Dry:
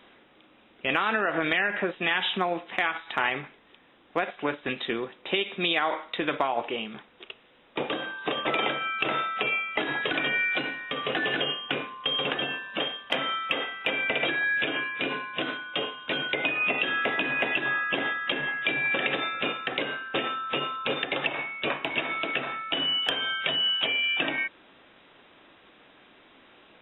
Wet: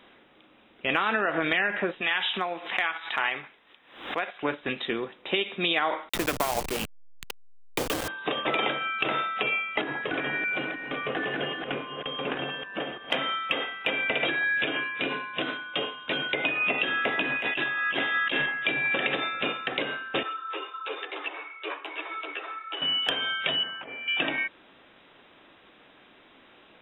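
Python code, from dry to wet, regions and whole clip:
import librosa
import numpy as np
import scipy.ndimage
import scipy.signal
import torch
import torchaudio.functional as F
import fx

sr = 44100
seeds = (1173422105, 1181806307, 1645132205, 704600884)

y = fx.chain(x, sr, fx.low_shelf(hz=490.0, db=-11.0),
    fx.pre_swell(db_per_s=98.0), at=(2.01, 4.43))
y = fx.chain(y, sr, fx.delta_hold(step_db=-27.5),
    fx.high_shelf(hz=3800.0, db=6.5),
    fx.band_squash(depth_pct=40), at=(6.09, 8.08))
y = fx.chain(y, sr, fx.reverse_delay(ms=317, wet_db=-5),
    fx.air_absorb(metres=430.0), at=(9.81, 13.1))
y = fx.chain(y, sr, fx.high_shelf(hz=2100.0, db=9.0),
    fx.over_compress(threshold_db=-28.0, ratio=-1.0), at=(17.36, 18.46))
y = fx.chain(y, sr, fx.cheby_ripple_highpass(hz=290.0, ripple_db=6),
    fx.ensemble(), at=(20.23, 22.82))
y = fx.chain(y, sr, fx.lowpass(hz=1900.0, slope=24),
    fx.over_compress(threshold_db=-37.0, ratio=-0.5), at=(23.63, 24.08))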